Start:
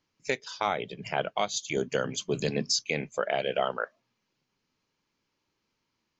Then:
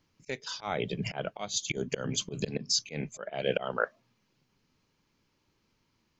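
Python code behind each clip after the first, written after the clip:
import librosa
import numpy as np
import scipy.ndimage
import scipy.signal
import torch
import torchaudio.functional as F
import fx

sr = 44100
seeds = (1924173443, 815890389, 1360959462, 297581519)

y = fx.low_shelf(x, sr, hz=210.0, db=9.0)
y = fx.auto_swell(y, sr, attack_ms=264.0)
y = F.gain(torch.from_numpy(y), 3.5).numpy()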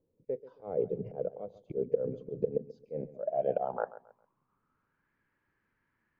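y = fx.filter_sweep_lowpass(x, sr, from_hz=490.0, to_hz=1700.0, start_s=2.85, end_s=5.14, q=6.5)
y = fx.echo_feedback(y, sr, ms=135, feedback_pct=29, wet_db=-16.5)
y = F.gain(torch.from_numpy(y), -7.5).numpy()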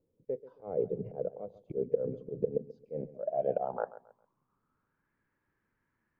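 y = fx.high_shelf(x, sr, hz=2100.0, db=-8.5)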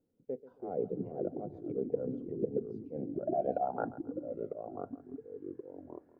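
y = fx.echo_pitch(x, sr, ms=275, semitones=-3, count=3, db_per_echo=-6.0)
y = fx.small_body(y, sr, hz=(250.0, 730.0, 1400.0), ring_ms=25, db=10)
y = F.gain(torch.from_numpy(y), -5.5).numpy()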